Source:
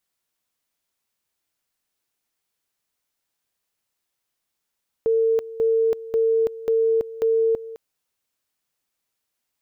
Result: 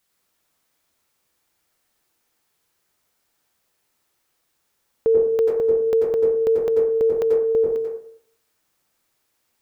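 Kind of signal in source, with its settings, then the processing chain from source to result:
two-level tone 451 Hz -16 dBFS, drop 16.5 dB, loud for 0.33 s, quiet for 0.21 s, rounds 5
in parallel at +2 dB: limiter -25 dBFS; on the sum: plate-style reverb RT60 0.65 s, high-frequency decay 0.25×, pre-delay 80 ms, DRR -1 dB

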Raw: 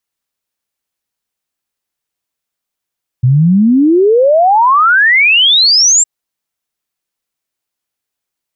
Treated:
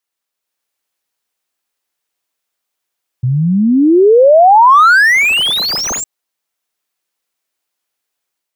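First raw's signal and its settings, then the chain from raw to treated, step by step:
log sweep 120 Hz -> 7600 Hz 2.81 s -5 dBFS
tone controls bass -10 dB, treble -1 dB; AGC gain up to 4.5 dB; slew limiter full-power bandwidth 750 Hz

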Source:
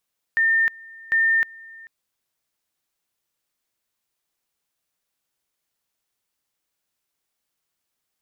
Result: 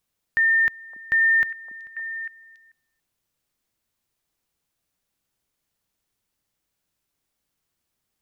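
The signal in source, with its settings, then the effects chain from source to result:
two-level tone 1810 Hz -15.5 dBFS, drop 24 dB, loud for 0.31 s, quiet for 0.44 s, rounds 2
low shelf 250 Hz +11 dB; delay with a stepping band-pass 0.282 s, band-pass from 270 Hz, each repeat 1.4 oct, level -7 dB

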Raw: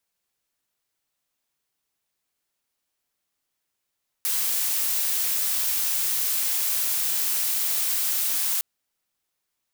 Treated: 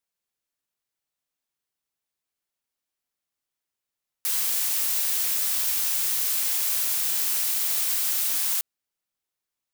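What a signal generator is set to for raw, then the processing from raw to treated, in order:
noise blue, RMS -24.5 dBFS 4.36 s
upward expander 1.5:1, over -38 dBFS

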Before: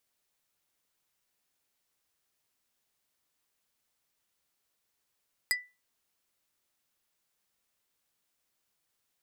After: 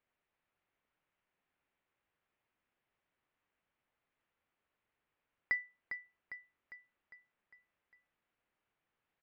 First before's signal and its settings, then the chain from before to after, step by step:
wood hit plate, lowest mode 1980 Hz, decay 0.27 s, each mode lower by 1 dB, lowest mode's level -23 dB
LPF 2600 Hz 24 dB/oct; feedback echo 0.403 s, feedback 54%, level -9 dB

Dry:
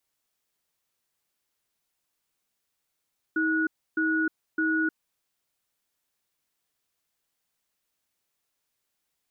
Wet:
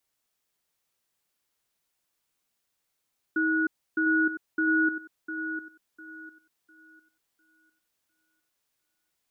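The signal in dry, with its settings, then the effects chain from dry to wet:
cadence 318 Hz, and 1460 Hz, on 0.31 s, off 0.30 s, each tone -25 dBFS 1.64 s
thinning echo 0.702 s, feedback 29%, high-pass 180 Hz, level -8.5 dB

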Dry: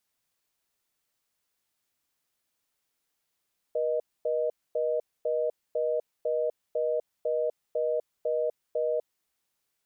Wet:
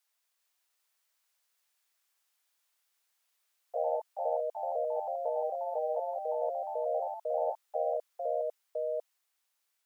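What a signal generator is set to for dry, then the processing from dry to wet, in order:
call progress tone reorder tone, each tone -27.5 dBFS 5.35 s
HPF 690 Hz 12 dB/oct; echoes that change speed 0.396 s, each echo +2 st, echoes 3

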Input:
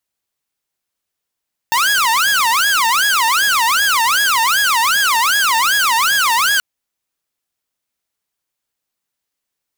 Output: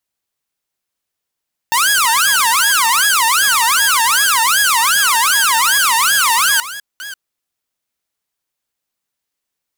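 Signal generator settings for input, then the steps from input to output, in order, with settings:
siren wail 898–1670 Hz 2.6/s saw -9.5 dBFS 4.88 s
reverse delay 0.34 s, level -14 dB; dynamic EQ 9800 Hz, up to +7 dB, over -34 dBFS, Q 1

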